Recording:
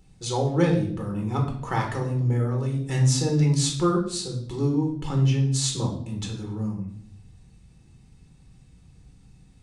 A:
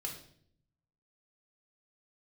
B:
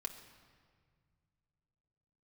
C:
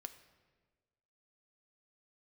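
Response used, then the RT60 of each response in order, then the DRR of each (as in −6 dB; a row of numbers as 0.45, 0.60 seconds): A; 0.60, 1.9, 1.4 seconds; −0.5, 3.0, 7.0 decibels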